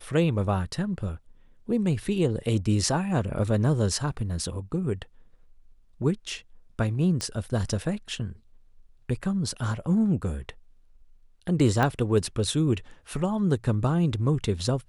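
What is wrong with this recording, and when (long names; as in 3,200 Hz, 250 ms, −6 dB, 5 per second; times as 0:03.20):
0:07.21: click −15 dBFS
0:11.83: click −12 dBFS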